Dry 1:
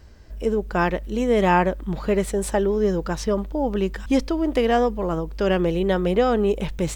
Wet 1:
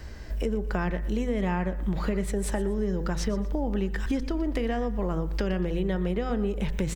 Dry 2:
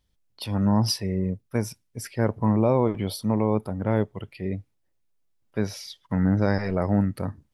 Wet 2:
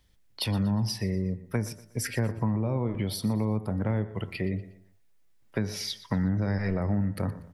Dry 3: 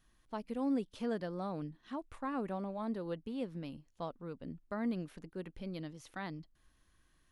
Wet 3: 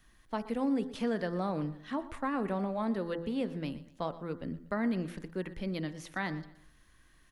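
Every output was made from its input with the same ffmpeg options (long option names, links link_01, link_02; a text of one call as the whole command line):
ffmpeg -i in.wav -filter_complex "[0:a]acrossover=split=210[link_01][link_02];[link_02]acompressor=threshold=-33dB:ratio=2.5[link_03];[link_01][link_03]amix=inputs=2:normalize=0,equalizer=frequency=1900:width_type=o:width=0.52:gain=5,bandreject=frequency=84.34:width_type=h:width=4,bandreject=frequency=168.68:width_type=h:width=4,bandreject=frequency=253.02:width_type=h:width=4,bandreject=frequency=337.36:width_type=h:width=4,bandreject=frequency=421.7:width_type=h:width=4,bandreject=frequency=506.04:width_type=h:width=4,bandreject=frequency=590.38:width_type=h:width=4,bandreject=frequency=674.72:width_type=h:width=4,bandreject=frequency=759.06:width_type=h:width=4,bandreject=frequency=843.4:width_type=h:width=4,bandreject=frequency=927.74:width_type=h:width=4,bandreject=frequency=1012.08:width_type=h:width=4,bandreject=frequency=1096.42:width_type=h:width=4,bandreject=frequency=1180.76:width_type=h:width=4,bandreject=frequency=1265.1:width_type=h:width=4,bandreject=frequency=1349.44:width_type=h:width=4,bandreject=frequency=1433.78:width_type=h:width=4,bandreject=frequency=1518.12:width_type=h:width=4,bandreject=frequency=1602.46:width_type=h:width=4,bandreject=frequency=1686.8:width_type=h:width=4,bandreject=frequency=1771.14:width_type=h:width=4,bandreject=frequency=1855.48:width_type=h:width=4,bandreject=frequency=1939.82:width_type=h:width=4,acompressor=threshold=-34dB:ratio=3,aecho=1:1:120|240|360:0.141|0.0509|0.0183,volume=7dB" out.wav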